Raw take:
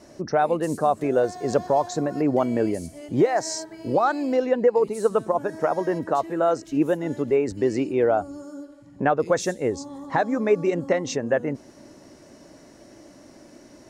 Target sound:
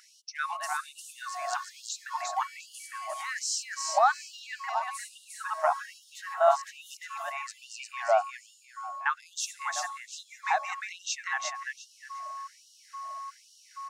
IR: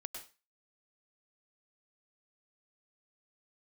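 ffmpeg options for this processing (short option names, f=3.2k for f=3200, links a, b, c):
-af "aecho=1:1:352|704|1056:0.668|0.154|0.0354,aeval=exprs='val(0)+0.0158*sin(2*PI*1100*n/s)':c=same,afftfilt=real='re*gte(b*sr/1024,590*pow(2800/590,0.5+0.5*sin(2*PI*1.2*pts/sr)))':imag='im*gte(b*sr/1024,590*pow(2800/590,0.5+0.5*sin(2*PI*1.2*pts/sr)))':win_size=1024:overlap=0.75"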